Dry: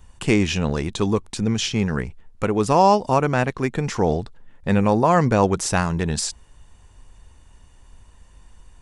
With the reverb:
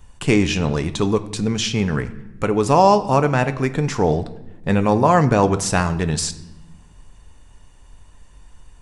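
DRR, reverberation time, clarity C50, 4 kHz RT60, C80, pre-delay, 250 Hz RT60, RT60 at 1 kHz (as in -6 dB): 9.5 dB, 1.0 s, 15.0 dB, 0.75 s, 17.0 dB, 7 ms, 1.7 s, 0.90 s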